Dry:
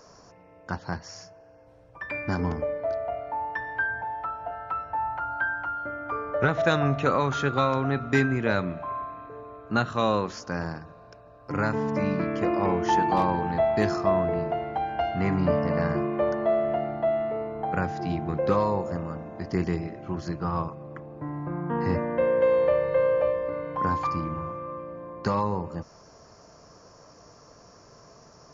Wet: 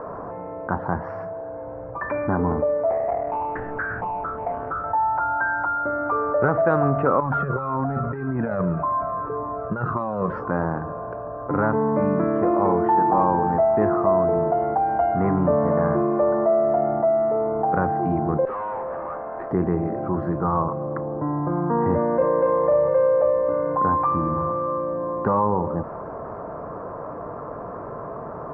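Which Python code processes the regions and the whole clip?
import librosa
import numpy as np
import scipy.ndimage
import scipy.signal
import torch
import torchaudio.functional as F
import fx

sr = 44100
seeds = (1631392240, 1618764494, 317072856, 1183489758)

y = fx.chain(x, sr, fx.median_filter(points=41),
    fx.doppler_dist(depth_ms=0.41), at=(2.9, 4.84))
y = fx.chain(y, sr, fx.over_compress(threshold_db=-28.0, ratio=-0.5),
    fx.peak_eq(hz=160.0, db=8.5, octaves=0.44),
    fx.comb_cascade(direction='falling', hz=1.8), at=(7.2, 10.51))
y = fx.chain(y, sr, fx.highpass(hz=720.0, slope=12),
    fx.tube_stage(drive_db=42.0, bias=0.7), at=(18.45, 19.51))
y = fx.chain(y, sr, fx.bass_treble(bass_db=0, treble_db=8),
    fx.doubler(ms=41.0, db=-4.5), at=(22.16, 22.88))
y = scipy.signal.sosfilt(scipy.signal.butter(4, 1300.0, 'lowpass', fs=sr, output='sos'), y)
y = fx.low_shelf(y, sr, hz=190.0, db=-8.5)
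y = fx.env_flatten(y, sr, amount_pct=50)
y = y * librosa.db_to_amplitude(4.0)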